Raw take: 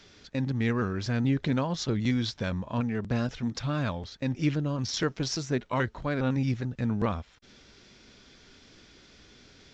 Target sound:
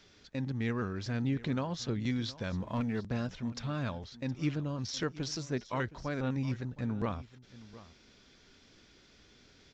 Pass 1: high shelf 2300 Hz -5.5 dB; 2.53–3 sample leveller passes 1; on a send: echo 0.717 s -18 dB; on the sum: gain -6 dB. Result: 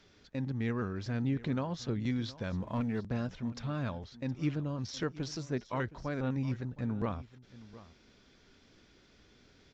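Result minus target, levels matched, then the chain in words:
4000 Hz band -4.0 dB
2.53–3 sample leveller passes 1; on a send: echo 0.717 s -18 dB; on the sum: gain -6 dB

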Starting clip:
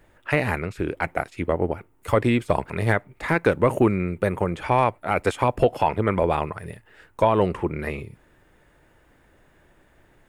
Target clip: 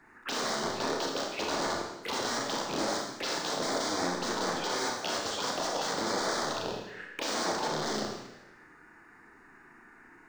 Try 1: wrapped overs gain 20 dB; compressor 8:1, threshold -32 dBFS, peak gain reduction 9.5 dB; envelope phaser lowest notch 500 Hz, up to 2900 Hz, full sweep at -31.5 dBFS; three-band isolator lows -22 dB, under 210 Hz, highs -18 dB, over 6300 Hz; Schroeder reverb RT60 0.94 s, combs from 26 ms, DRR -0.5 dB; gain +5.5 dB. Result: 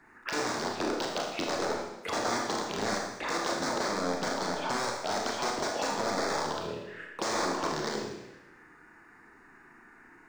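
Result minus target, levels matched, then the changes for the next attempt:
wrapped overs: distortion -8 dB
change: wrapped overs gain 26.5 dB

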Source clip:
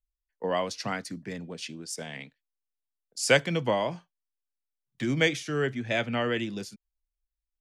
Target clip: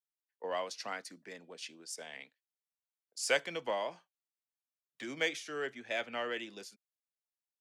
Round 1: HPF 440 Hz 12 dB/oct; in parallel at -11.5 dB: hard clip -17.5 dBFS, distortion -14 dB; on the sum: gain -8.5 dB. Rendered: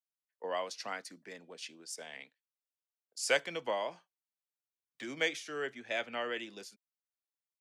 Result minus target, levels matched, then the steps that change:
hard clip: distortion -8 dB
change: hard clip -26 dBFS, distortion -6 dB

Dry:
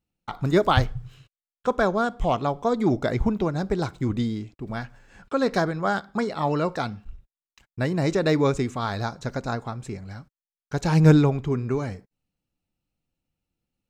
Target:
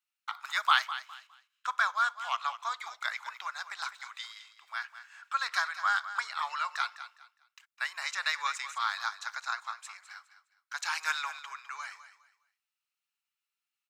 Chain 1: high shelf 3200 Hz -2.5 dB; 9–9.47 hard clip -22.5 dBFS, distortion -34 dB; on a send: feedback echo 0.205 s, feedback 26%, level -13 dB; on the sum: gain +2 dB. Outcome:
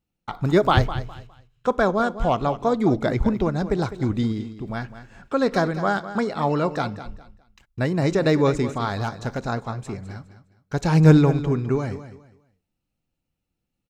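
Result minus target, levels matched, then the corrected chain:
1000 Hz band -4.5 dB
steep high-pass 1100 Hz 36 dB/oct; high shelf 3200 Hz -2.5 dB; 9–9.47 hard clip -22.5 dBFS, distortion -51 dB; on a send: feedback echo 0.205 s, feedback 26%, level -13 dB; on the sum: gain +2 dB

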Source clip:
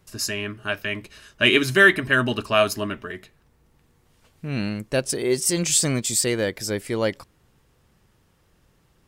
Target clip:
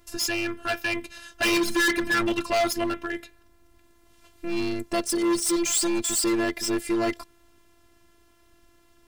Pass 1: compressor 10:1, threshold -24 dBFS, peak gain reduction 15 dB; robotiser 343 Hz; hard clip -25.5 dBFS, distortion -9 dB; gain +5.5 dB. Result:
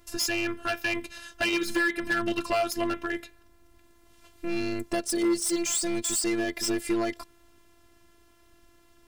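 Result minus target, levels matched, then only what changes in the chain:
compressor: peak gain reduction +15 dB
remove: compressor 10:1, threshold -24 dBFS, peak gain reduction 15 dB

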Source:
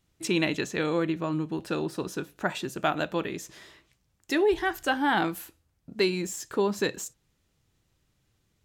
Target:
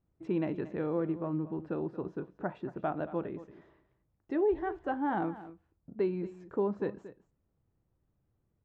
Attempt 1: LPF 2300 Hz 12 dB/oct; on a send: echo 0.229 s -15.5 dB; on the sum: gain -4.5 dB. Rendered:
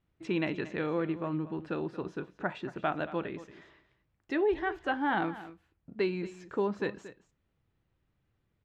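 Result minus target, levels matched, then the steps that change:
2000 Hz band +8.5 dB
change: LPF 930 Hz 12 dB/oct

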